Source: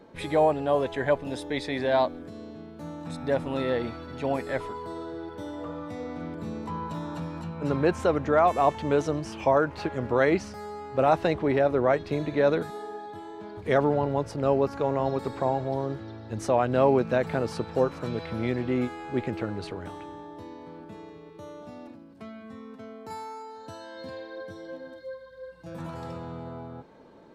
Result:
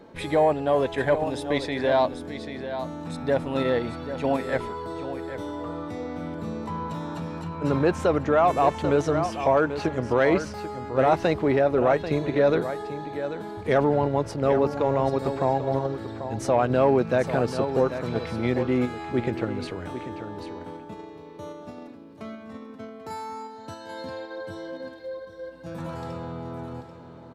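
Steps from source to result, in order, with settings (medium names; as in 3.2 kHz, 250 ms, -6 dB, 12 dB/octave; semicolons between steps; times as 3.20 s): delay 789 ms -10 dB; in parallel at -3 dB: level held to a coarse grid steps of 14 dB; on the sum: saturation -8.5 dBFS, distortion -24 dB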